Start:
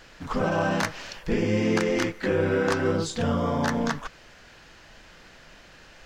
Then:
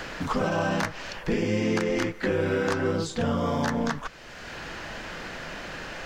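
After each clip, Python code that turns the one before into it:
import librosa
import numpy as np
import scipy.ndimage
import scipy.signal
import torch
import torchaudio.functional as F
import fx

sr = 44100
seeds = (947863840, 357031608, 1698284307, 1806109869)

y = fx.band_squash(x, sr, depth_pct=70)
y = F.gain(torch.from_numpy(y), -1.5).numpy()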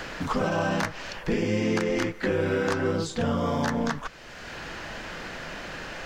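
y = x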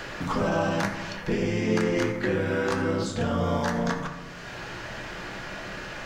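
y = fx.rev_fdn(x, sr, rt60_s=1.3, lf_ratio=1.3, hf_ratio=0.5, size_ms=49.0, drr_db=2.5)
y = F.gain(torch.from_numpy(y), -1.5).numpy()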